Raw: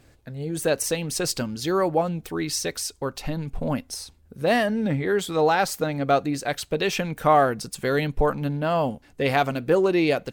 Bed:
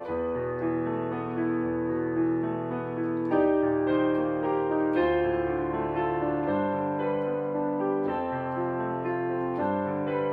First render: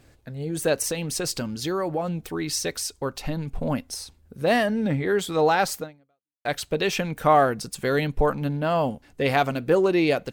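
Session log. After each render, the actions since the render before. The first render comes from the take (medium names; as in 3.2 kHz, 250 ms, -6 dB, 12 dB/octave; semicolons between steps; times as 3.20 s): 0.88–2.52 s: compression 3:1, threshold -23 dBFS; 5.78–6.45 s: fade out exponential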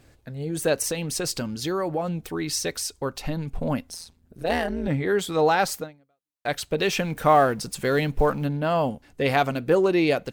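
3.90–4.88 s: AM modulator 170 Hz, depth 85%; 6.78–8.46 s: companding laws mixed up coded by mu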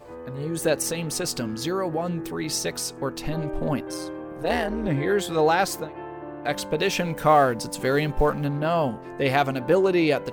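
add bed -9.5 dB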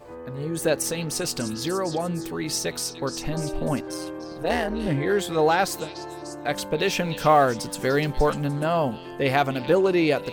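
repeats whose band climbs or falls 297 ms, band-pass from 3.9 kHz, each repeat 0.7 oct, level -7 dB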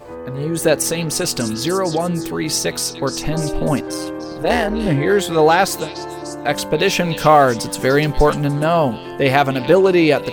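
trim +7.5 dB; peak limiter -1 dBFS, peak gain reduction 1.5 dB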